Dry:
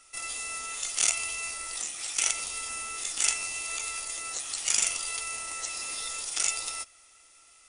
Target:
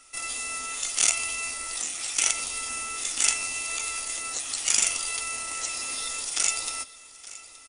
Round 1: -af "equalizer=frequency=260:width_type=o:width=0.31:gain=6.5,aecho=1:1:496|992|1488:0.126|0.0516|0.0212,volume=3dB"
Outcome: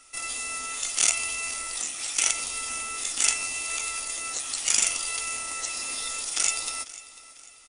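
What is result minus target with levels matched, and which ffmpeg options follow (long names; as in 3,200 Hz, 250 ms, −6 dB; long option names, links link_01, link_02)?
echo 375 ms early
-af "equalizer=frequency=260:width_type=o:width=0.31:gain=6.5,aecho=1:1:871|1742|2613:0.126|0.0516|0.0212,volume=3dB"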